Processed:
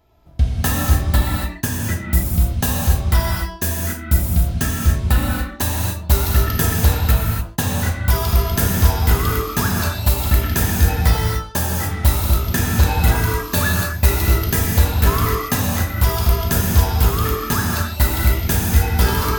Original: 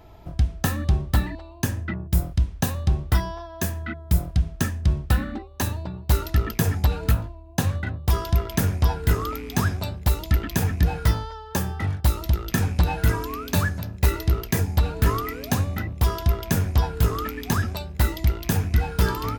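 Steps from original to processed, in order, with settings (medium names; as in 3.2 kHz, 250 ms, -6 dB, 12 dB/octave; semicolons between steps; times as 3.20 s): dynamic bell 210 Hz, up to -3 dB, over -30 dBFS, Q 0.76; gate -29 dBFS, range -15 dB; treble shelf 3.9 kHz +5.5 dB; gated-style reverb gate 310 ms flat, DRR -2.5 dB; trim +2.5 dB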